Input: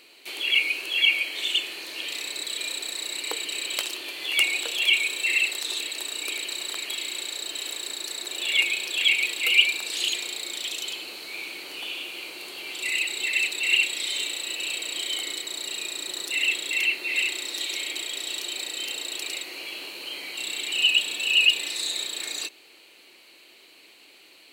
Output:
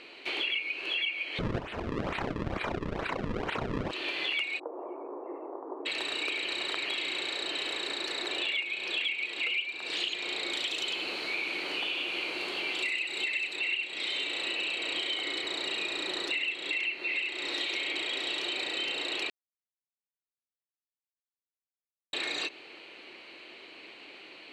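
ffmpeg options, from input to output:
-filter_complex "[0:a]asplit=3[a][b][c];[a]afade=t=out:st=1.38:d=0.02[d];[b]acrusher=samples=34:mix=1:aa=0.000001:lfo=1:lforange=54.4:lforate=2.2,afade=t=in:st=1.38:d=0.02,afade=t=out:st=3.9:d=0.02[e];[c]afade=t=in:st=3.9:d=0.02[f];[d][e][f]amix=inputs=3:normalize=0,asplit=3[g][h][i];[g]afade=t=out:st=4.58:d=0.02[j];[h]asuperpass=centerf=520:order=12:qfactor=0.62,afade=t=in:st=4.58:d=0.02,afade=t=out:st=5.85:d=0.02[k];[i]afade=t=in:st=5.85:d=0.02[l];[j][k][l]amix=inputs=3:normalize=0,asettb=1/sr,asplit=3[m][n][o];[m]atrim=end=10.524[p];[n]atrim=start=10.52:end=13.56,asetpts=PTS-STARTPTS,afade=t=in:d=0.004:c=qsin,afade=t=out:st=3.036:d=0.004:c=qsin,highshelf=f=7.5k:g=10[q];[o]atrim=start=13.556[r];[p][q]acrossfade=d=0.004:c1=hsin:c2=qsin[s];[s][r]acrossfade=d=0.004:c1=qsin:c2=hsin,asplit=3[t][u][v];[t]atrim=end=19.3,asetpts=PTS-STARTPTS,afade=t=out:st=19.296:d=0.004:c=hsin[w];[u]atrim=start=19.3:end=22.13,asetpts=PTS-STARTPTS,volume=0[x];[v]atrim=start=22.13,asetpts=PTS-STARTPTS,afade=t=in:d=0.004:c=hsin[y];[w][x][y]concat=n=3:v=0:a=1,lowpass=2.8k,acompressor=threshold=-36dB:ratio=12,volume=7dB"

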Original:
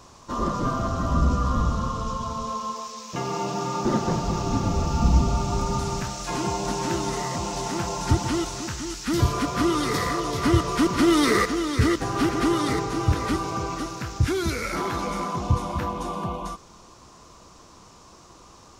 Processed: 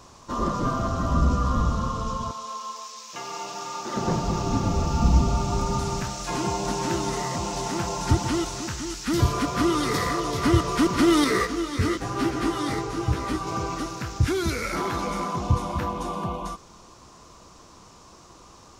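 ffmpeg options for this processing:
-filter_complex "[0:a]asettb=1/sr,asplit=3[a][b][c];[a]atrim=end=2.314[d];[b]atrim=start=2.31:end=3.97,asetpts=PTS-STARTPTS,afade=t=in:d=0.004:c=qsin,afade=t=out:st=1.656:d=0.004:c=qsin,highpass=f=1.3k:p=1[e];[c]atrim=start=3.966[f];[d][e]acrossfade=d=0.004:c1=hsin:c2=qsin[g];[g][f]acrossfade=d=0.004:c1=qsin:c2=hsin,asettb=1/sr,asplit=3[h][i][j];[h]atrim=end=11.244[k];[i]atrim=start=11.24:end=13.47,asetpts=PTS-STARTPTS,afade=t=in:d=0.004:c=qsin,afade=t=out:st=2.226:d=0.004:c=qsin,flanger=delay=15:depth=6.4:speed=1[l];[j]atrim=start=13.466[m];[k][l]acrossfade=d=0.004:c1=hsin:c2=qsin[n];[n][m]acrossfade=d=0.004:c1=qsin:c2=hsin"

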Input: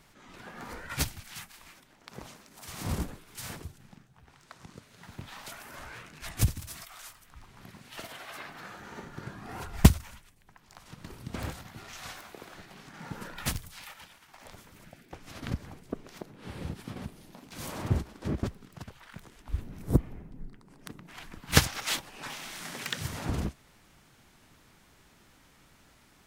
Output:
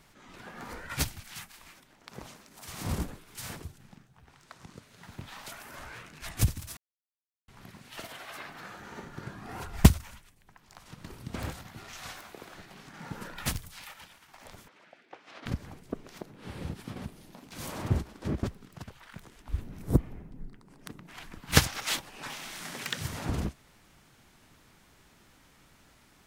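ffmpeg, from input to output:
-filter_complex "[0:a]asettb=1/sr,asplit=3[a][b][c];[a]atrim=end=14.684[d];[b]atrim=start=14.68:end=15.46,asetpts=PTS-STARTPTS,afade=t=in:d=0.004:c=qsin,afade=t=out:st=0.776:d=0.004:c=qsin,highpass=450,lowpass=3.7k[e];[c]atrim=start=15.456[f];[d][e]acrossfade=d=0.004:c1=hsin:c2=qsin[g];[g][f]acrossfade=d=0.004:c1=qsin:c2=hsin,asplit=3[h][i][j];[h]atrim=end=6.77,asetpts=PTS-STARTPTS,afade=t=out:st=6.766:d=0.004:c=hsin[k];[i]atrim=start=6.77:end=7.48,asetpts=PTS-STARTPTS,volume=0[l];[j]atrim=start=7.48,asetpts=PTS-STARTPTS,afade=t=in:d=0.004:c=hsin[m];[k][l][m]concat=n=3:v=0:a=1"

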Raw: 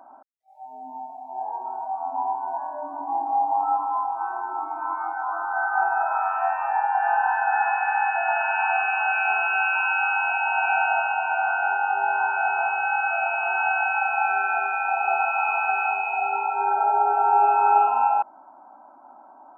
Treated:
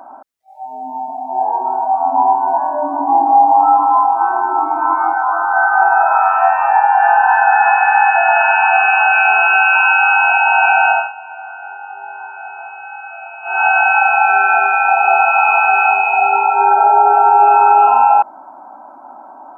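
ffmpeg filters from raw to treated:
-filter_complex "[0:a]asettb=1/sr,asplit=3[a][b][c];[a]atrim=end=1.084[d];[b]atrim=start=1.08:end=5.19,asetpts=PTS-STARTPTS,afade=t=in:d=0.004:c=qsin,afade=t=out:st=4.106:d=0.004:c=qsin,lowshelf=f=430:g=9[e];[c]atrim=start=5.186[f];[d][e]acrossfade=d=0.004:c1=hsin:c2=qsin[g];[g][f]acrossfade=d=0.004:c1=qsin:c2=hsin,asplit=3[h][i][j];[h]atrim=end=11.12,asetpts=PTS-STARTPTS,afade=t=out:st=10.87:d=0.25:silence=0.112202[k];[i]atrim=start=11.12:end=13.43,asetpts=PTS-STARTPTS,volume=-19dB[l];[j]atrim=start=13.43,asetpts=PTS-STARTPTS,afade=t=in:d=0.25:silence=0.112202[m];[k][l][m]concat=n=3:v=0:a=1,alimiter=level_in=13dB:limit=-1dB:release=50:level=0:latency=1,volume=-1dB"

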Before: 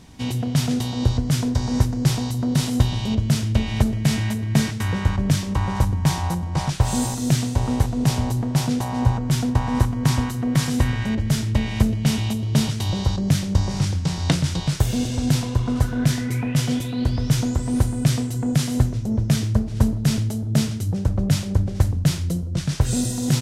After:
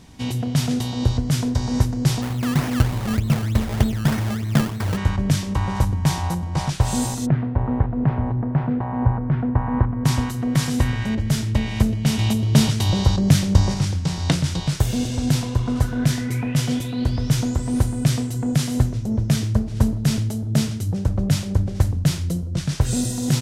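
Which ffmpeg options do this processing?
-filter_complex "[0:a]asplit=3[a][b][c];[a]afade=t=out:st=2.21:d=0.02[d];[b]acrusher=samples=21:mix=1:aa=0.000001:lfo=1:lforange=21:lforate=3.3,afade=t=in:st=2.21:d=0.02,afade=t=out:st=4.96:d=0.02[e];[c]afade=t=in:st=4.96:d=0.02[f];[d][e][f]amix=inputs=3:normalize=0,asplit=3[g][h][i];[g]afade=t=out:st=7.25:d=0.02[j];[h]lowpass=f=1.8k:w=0.5412,lowpass=f=1.8k:w=1.3066,afade=t=in:st=7.25:d=0.02,afade=t=out:st=10.04:d=0.02[k];[i]afade=t=in:st=10.04:d=0.02[l];[j][k][l]amix=inputs=3:normalize=0,asplit=3[m][n][o];[m]atrim=end=12.192[p];[n]atrim=start=12.188:end=13.742,asetpts=PTS-STARTPTS,volume=4dB[q];[o]atrim=start=13.738[r];[p][q]acrossfade=d=0.004:c1=hsin:c2=hsin[s];[s][r]acrossfade=d=0.004:c1=hsin:c2=hsin"

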